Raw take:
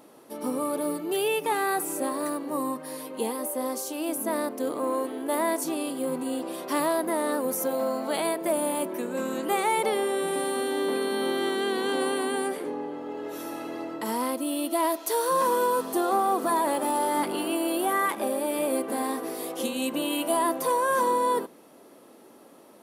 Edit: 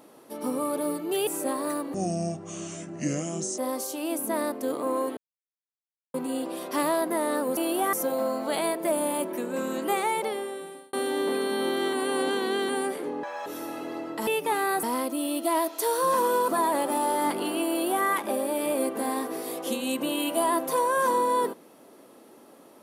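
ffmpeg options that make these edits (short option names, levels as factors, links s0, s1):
-filter_complex "[0:a]asplit=16[s0][s1][s2][s3][s4][s5][s6][s7][s8][s9][s10][s11][s12][s13][s14][s15];[s0]atrim=end=1.272[s16];[s1]atrim=start=1.828:end=2.504[s17];[s2]atrim=start=2.5:end=3.55,asetpts=PTS-STARTPTS,asetrate=28224,aresample=44100[s18];[s3]atrim=start=3.546:end=5.14,asetpts=PTS-STARTPTS,afade=t=out:st=1.59:d=0.004:c=hsin[s19];[s4]atrim=start=5.14:end=6.11,asetpts=PTS-STARTPTS,volume=0[s20];[s5]atrim=start=6.11:end=7.542,asetpts=PTS-STARTPTS,afade=t=in:d=0.004:c=hsin[s21];[s6]atrim=start=17.618:end=17.982[s22];[s7]atrim=start=7.538:end=10.54,asetpts=PTS-STARTPTS,afade=t=out:st=1.942:d=1.06[s23];[s8]atrim=start=10.54:end=11.542,asetpts=PTS-STARTPTS,afade=t=in:d=0.004:c=hsin[s24];[s9]atrim=start=11.538:end=12.302,asetpts=PTS-STARTPTS,areverse[s25];[s10]atrim=start=12.298:end=12.844[s26];[s11]atrim=start=12.84:end=13.3,asetpts=PTS-STARTPTS,asetrate=87759,aresample=44100[s27];[s12]atrim=start=13.296:end=14.112[s28];[s13]atrim=start=1.268:end=1.832[s29];[s14]atrim=start=14.108:end=15.762[s30];[s15]atrim=start=16.408[s31];[s16][s17]acrossfade=d=0.004:c1=hsin:c2=hsin[s32];[s32][s18]acrossfade=d=0.004:c1=hsin:c2=hsin[s33];[s19][s20][s21]concat=n=3:v=0:a=1[s34];[s33][s34]acrossfade=d=0.004:c1=hsin:c2=hsin[s35];[s35][s22]acrossfade=d=0.004:c1=hsin:c2=hsin[s36];[s23][s24]concat=n=2:v=0:a=1[s37];[s36][s37]acrossfade=d=0.004:c1=hsin:c2=hsin[s38];[s38][s25]acrossfade=d=0.004:c1=hsin:c2=hsin[s39];[s39][s26]acrossfade=d=0.004:c1=hsin:c2=hsin[s40];[s40][s27]acrossfade=d=0.004:c1=hsin:c2=hsin[s41];[s41][s28]acrossfade=d=0.004:c1=hsin:c2=hsin[s42];[s42][s29]acrossfade=d=0.004:c1=hsin:c2=hsin[s43];[s43][s30]acrossfade=d=0.004:c1=hsin:c2=hsin[s44];[s44][s31]acrossfade=d=0.004:c1=hsin:c2=hsin"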